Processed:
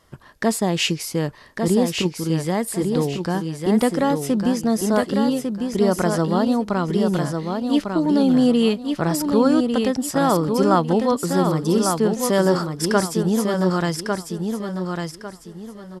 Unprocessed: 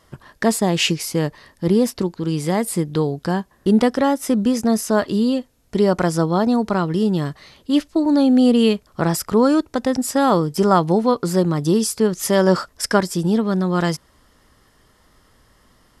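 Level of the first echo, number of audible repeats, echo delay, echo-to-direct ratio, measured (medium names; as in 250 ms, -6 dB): -5.0 dB, 3, 1150 ms, -4.5 dB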